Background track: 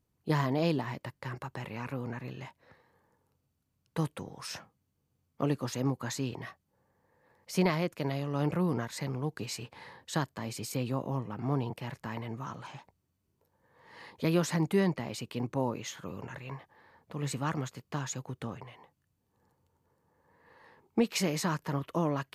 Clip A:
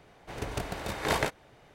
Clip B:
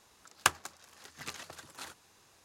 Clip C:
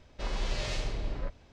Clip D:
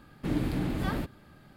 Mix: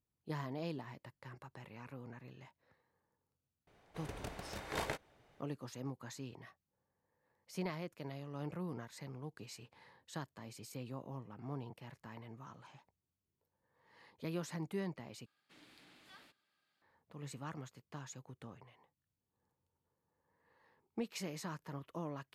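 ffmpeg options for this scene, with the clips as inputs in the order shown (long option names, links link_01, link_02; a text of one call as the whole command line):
ffmpeg -i bed.wav -i cue0.wav -i cue1.wav -i cue2.wav -i cue3.wav -filter_complex "[0:a]volume=-13dB[link_01];[4:a]bandpass=frequency=4400:width_type=q:width=0.75:csg=0[link_02];[link_01]asplit=2[link_03][link_04];[link_03]atrim=end=15.264[link_05];[link_02]atrim=end=1.56,asetpts=PTS-STARTPTS,volume=-15dB[link_06];[link_04]atrim=start=16.816[link_07];[1:a]atrim=end=1.74,asetpts=PTS-STARTPTS,volume=-11dB,afade=type=in:duration=0.004:curve=hsin,afade=type=out:start_time=1.736:duration=0.004:curve=hsin,adelay=3670[link_08];[link_05][link_06]acrossfade=duration=0.004:curve1=hsin:curve2=hsin[link_09];[link_09][link_07]acrossfade=duration=0.004:curve1=hsin:curve2=hsin[link_10];[link_10][link_08]amix=inputs=2:normalize=0" out.wav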